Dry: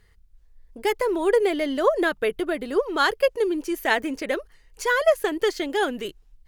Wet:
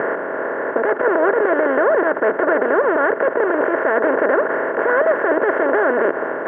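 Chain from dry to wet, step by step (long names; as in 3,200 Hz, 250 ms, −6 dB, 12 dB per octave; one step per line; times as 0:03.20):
compressor on every frequency bin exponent 0.2
elliptic band-pass filter 130–1,700 Hz, stop band 40 dB
brickwall limiter −7 dBFS, peak gain reduction 9 dB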